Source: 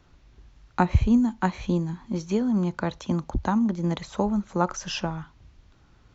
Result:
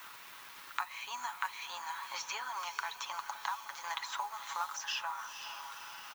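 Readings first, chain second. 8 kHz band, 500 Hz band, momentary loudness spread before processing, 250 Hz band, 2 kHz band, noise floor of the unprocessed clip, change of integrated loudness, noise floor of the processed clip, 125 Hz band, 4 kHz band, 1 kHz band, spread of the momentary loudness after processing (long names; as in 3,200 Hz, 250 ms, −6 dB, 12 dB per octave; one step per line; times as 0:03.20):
can't be measured, −25.5 dB, 9 LU, below −40 dB, −2.0 dB, −58 dBFS, −14.0 dB, −51 dBFS, below −40 dB, −1.5 dB, −6.5 dB, 8 LU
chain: Chebyshev high-pass filter 950 Hz, order 4
high-shelf EQ 6,700 Hz −5.5 dB
comb filter 7.2 ms
downward compressor 3 to 1, threshold −48 dBFS, peak gain reduction 19 dB
background noise violet −71 dBFS
surface crackle 520 per second −59 dBFS
noise that follows the level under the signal 24 dB
on a send: feedback delay with all-pass diffusion 509 ms, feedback 48%, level −11 dB
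on the sum: multiband upward and downward compressor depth 40%
level +9.5 dB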